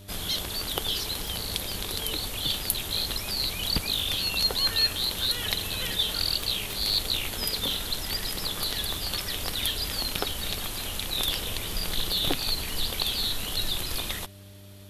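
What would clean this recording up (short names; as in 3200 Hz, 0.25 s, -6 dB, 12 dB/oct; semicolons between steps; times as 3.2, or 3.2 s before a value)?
de-click; de-hum 98.4 Hz, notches 4; notch 600 Hz, Q 30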